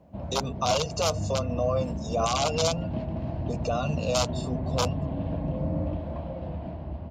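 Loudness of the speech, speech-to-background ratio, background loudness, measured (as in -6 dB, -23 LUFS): -29.0 LUFS, 4.0 dB, -33.0 LUFS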